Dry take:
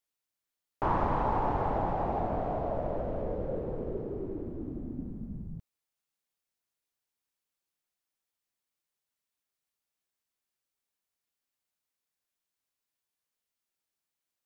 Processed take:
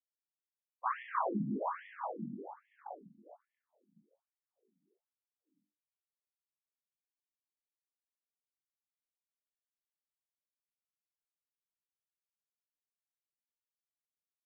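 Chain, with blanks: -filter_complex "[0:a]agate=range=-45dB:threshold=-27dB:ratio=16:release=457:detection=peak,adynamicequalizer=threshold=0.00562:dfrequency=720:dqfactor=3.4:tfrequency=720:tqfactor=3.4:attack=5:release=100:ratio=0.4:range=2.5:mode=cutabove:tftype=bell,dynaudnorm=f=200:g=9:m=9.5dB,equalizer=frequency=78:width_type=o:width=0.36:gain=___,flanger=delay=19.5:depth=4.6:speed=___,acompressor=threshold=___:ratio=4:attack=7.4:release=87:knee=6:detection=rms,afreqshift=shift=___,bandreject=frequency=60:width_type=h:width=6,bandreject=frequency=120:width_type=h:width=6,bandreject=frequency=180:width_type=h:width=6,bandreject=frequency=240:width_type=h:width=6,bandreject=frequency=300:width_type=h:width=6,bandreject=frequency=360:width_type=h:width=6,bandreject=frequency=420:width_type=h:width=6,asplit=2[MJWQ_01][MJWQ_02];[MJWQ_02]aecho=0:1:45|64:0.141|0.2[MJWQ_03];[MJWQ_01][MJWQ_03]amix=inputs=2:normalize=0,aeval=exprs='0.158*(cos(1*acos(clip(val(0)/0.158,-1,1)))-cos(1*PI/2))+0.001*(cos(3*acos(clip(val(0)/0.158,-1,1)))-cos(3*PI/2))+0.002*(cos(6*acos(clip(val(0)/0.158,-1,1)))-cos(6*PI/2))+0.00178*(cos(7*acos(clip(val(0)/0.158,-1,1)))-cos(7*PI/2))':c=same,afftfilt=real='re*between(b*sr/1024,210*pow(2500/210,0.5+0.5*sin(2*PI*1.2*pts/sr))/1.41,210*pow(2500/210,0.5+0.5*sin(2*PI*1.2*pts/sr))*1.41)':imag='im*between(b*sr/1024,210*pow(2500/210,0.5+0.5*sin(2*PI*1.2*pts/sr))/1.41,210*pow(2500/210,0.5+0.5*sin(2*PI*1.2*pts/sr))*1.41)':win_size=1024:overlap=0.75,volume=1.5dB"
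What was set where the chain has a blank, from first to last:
9.5, 0.42, -26dB, 130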